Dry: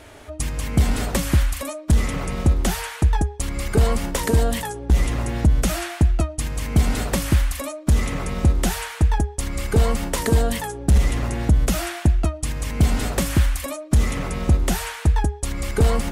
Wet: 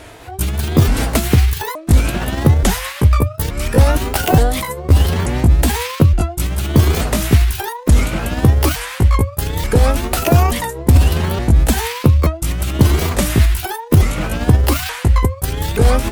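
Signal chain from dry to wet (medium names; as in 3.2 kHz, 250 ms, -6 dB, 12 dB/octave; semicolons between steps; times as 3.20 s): sawtooth pitch modulation +9 st, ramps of 876 ms; trim +7 dB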